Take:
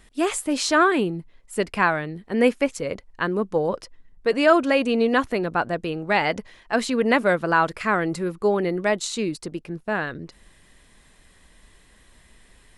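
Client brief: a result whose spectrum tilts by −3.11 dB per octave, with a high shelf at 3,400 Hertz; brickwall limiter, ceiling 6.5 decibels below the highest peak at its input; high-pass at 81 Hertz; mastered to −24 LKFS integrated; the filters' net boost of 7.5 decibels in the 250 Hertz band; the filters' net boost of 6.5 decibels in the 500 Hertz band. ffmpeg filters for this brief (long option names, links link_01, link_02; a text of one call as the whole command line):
ffmpeg -i in.wav -af "highpass=81,equalizer=frequency=250:width_type=o:gain=7.5,equalizer=frequency=500:width_type=o:gain=6,highshelf=frequency=3400:gain=-3.5,volume=-5dB,alimiter=limit=-12dB:level=0:latency=1" out.wav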